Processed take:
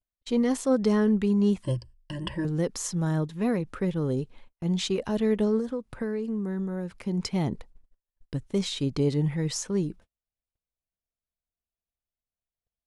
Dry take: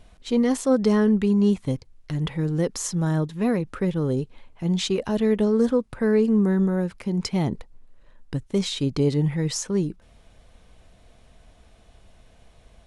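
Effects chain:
noise gate −42 dBFS, range −42 dB
0:01.63–0:02.45: EQ curve with evenly spaced ripples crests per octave 1.3, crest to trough 18 dB
0:05.58–0:06.96: downward compressor, threshold −24 dBFS, peak gain reduction 9 dB
level −3.5 dB

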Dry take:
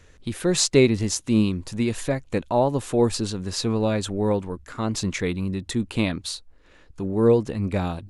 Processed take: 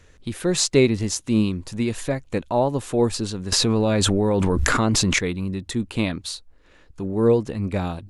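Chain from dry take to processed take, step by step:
0:03.52–0:05.19: envelope flattener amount 100%

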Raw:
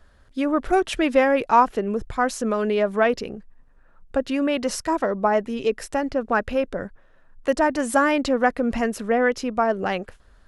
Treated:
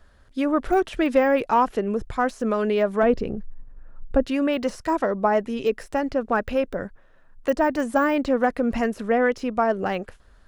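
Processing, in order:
de-essing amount 95%
0:03.03–0:04.25: spectral tilt −2.5 dB per octave

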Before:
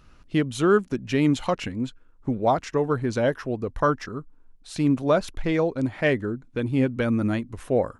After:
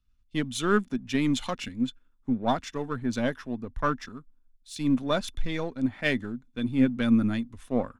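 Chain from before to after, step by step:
gain on one half-wave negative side −3 dB
parametric band 310 Hz −10.5 dB 2.8 octaves
hollow resonant body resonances 240/3,500 Hz, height 14 dB, ringing for 50 ms
multiband upward and downward expander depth 70%

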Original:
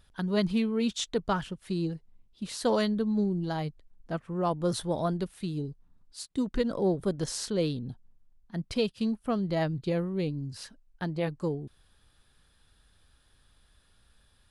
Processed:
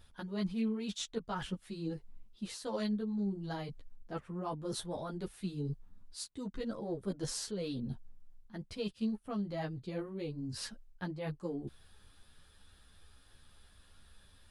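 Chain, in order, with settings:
reversed playback
downward compressor 6 to 1, threshold −38 dBFS, peak gain reduction 15.5 dB
reversed playback
string-ensemble chorus
level +5.5 dB

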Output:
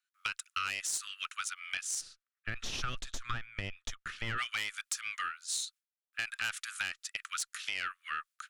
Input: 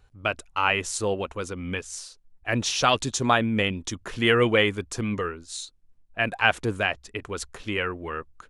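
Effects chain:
noise gate with hold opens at −47 dBFS
Butterworth high-pass 1,200 Hz 96 dB per octave
tube saturation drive 18 dB, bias 0.55
brickwall limiter −22 dBFS, peak gain reduction 7 dB
spectral tilt +2 dB per octave, from 0:02.00 −3.5 dB per octave, from 0:04.37 +2 dB per octave
downward compressor 3 to 1, threshold −38 dBFS, peak gain reduction 10 dB
level +4 dB

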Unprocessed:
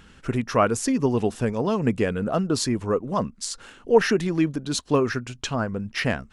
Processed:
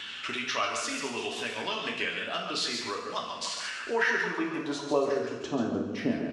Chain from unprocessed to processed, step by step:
delay that plays each chunk backwards 158 ms, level −13 dB
band-pass filter sweep 3,300 Hz → 300 Hz, 0:03.30–0:05.68
on a send: single-tap delay 139 ms −7.5 dB
on the sum: tape wow and flutter 61 cents
parametric band 6,800 Hz +3.5 dB 1.7 octaves
coupled-rooms reverb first 0.57 s, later 1.7 s, DRR −0.5 dB
multiband upward and downward compressor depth 70%
level +2.5 dB

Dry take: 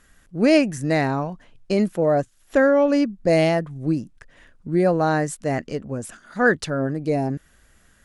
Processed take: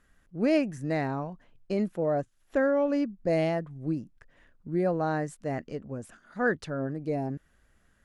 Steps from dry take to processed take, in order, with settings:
high-shelf EQ 3,200 Hz −8.5 dB
level −8 dB

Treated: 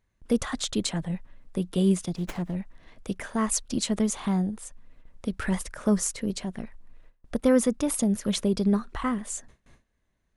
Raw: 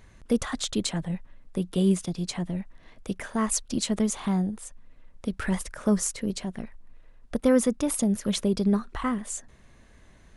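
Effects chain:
noise gate with hold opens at −42 dBFS
0:02.16–0:02.56: windowed peak hold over 9 samples

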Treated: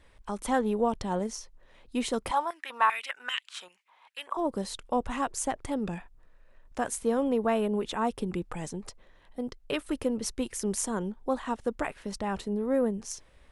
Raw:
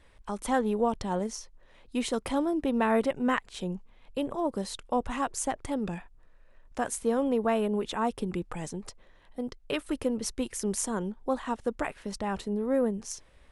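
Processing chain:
0:02.31–0:04.37: high-pass on a step sequencer 5.1 Hz 930–3,000 Hz

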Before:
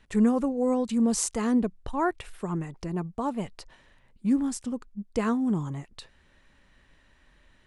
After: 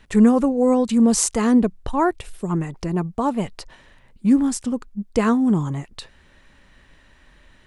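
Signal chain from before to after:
0:02.02–0:02.49: parametric band 1,500 Hz −3 dB → −14.5 dB 2.1 octaves
level +8 dB

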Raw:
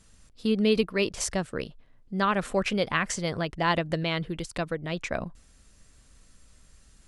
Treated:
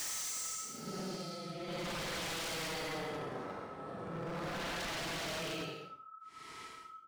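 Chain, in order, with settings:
dead-zone distortion −37.5 dBFS
steady tone 1,300 Hz −48 dBFS
extreme stretch with random phases 16×, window 0.05 s, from 0:03.12
high-pass filter 260 Hz 6 dB per octave
double-tracking delay 47 ms −13 dB
wave folding −32.5 dBFS
level −2 dB

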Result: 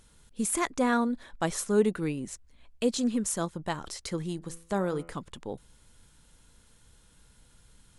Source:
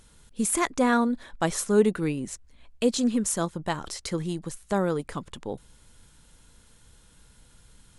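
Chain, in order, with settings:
0:04.36–0:05.14: hum removal 83.62 Hz, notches 36
level −3.5 dB

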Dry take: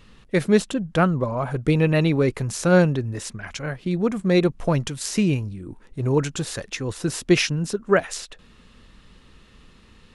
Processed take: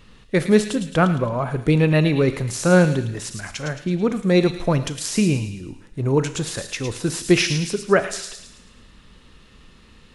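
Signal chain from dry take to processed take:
on a send: delay with a high-pass on its return 109 ms, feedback 46%, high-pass 2,900 Hz, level −5.5 dB
on the sum: four-comb reverb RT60 0.74 s, combs from 26 ms, DRR 12 dB
level +1.5 dB

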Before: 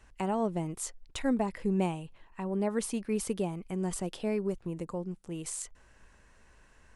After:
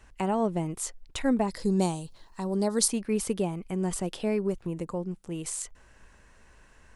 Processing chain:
0:01.49–0:02.88: high shelf with overshoot 3,400 Hz +9 dB, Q 3
0:03.94–0:04.67: one half of a high-frequency compander encoder only
level +3.5 dB

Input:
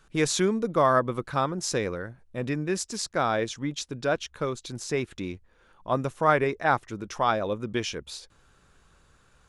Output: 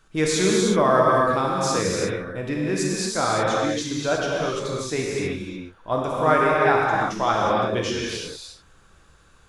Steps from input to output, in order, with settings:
reverb whose tail is shaped and stops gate 390 ms flat, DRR −4 dB

